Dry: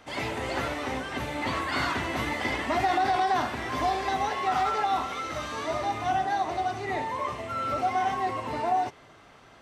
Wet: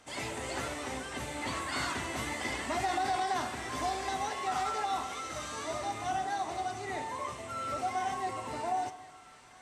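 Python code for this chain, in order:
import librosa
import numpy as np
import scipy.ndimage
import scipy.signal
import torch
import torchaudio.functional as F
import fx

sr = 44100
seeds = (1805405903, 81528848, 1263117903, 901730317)

y = fx.peak_eq(x, sr, hz=8200.0, db=14.0, octaves=1.0)
y = fx.echo_split(y, sr, split_hz=1200.0, low_ms=139, high_ms=799, feedback_pct=52, wet_db=-15.5)
y = y * 10.0 ** (-7.0 / 20.0)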